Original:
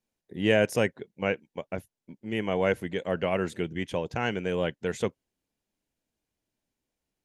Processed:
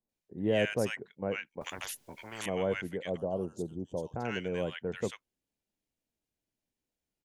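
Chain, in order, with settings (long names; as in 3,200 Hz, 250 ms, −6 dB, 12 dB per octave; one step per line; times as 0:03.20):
0:03.08–0:04.13: Chebyshev band-stop filter 750–5,500 Hz, order 2
multiband delay without the direct sound lows, highs 90 ms, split 1,200 Hz
0:01.61–0:02.46: every bin compressed towards the loudest bin 10 to 1
level −5 dB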